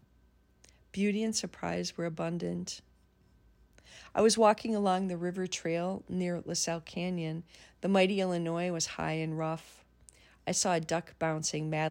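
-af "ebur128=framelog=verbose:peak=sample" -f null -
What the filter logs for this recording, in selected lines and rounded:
Integrated loudness:
  I:         -31.9 LUFS
  Threshold: -42.9 LUFS
Loudness range:
  LRA:         5.5 LU
  Threshold: -52.6 LUFS
  LRA low:   -36.0 LUFS
  LRA high:  -30.5 LUFS
Sample peak:
  Peak:      -12.4 dBFS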